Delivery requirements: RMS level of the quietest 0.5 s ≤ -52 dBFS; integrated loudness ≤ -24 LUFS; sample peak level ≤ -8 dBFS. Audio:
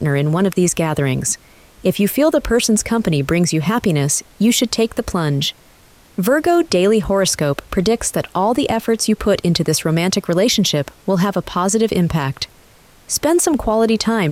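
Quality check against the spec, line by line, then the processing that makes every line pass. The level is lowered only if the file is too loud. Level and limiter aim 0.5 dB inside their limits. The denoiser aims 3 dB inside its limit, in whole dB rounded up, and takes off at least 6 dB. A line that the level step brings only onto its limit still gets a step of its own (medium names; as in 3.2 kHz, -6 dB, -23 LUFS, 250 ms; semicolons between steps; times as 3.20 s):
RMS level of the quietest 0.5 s -48 dBFS: fail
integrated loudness -17.0 LUFS: fail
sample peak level -5.5 dBFS: fail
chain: trim -7.5 dB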